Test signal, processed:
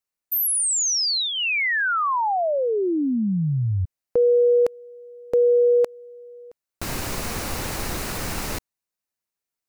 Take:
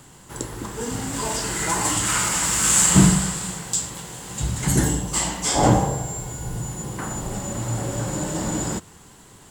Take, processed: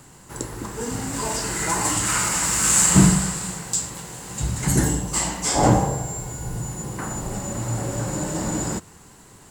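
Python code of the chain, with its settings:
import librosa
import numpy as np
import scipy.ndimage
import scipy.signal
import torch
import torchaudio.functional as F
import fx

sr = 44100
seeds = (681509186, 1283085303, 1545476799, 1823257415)

y = fx.peak_eq(x, sr, hz=3300.0, db=-6.0, octaves=0.28)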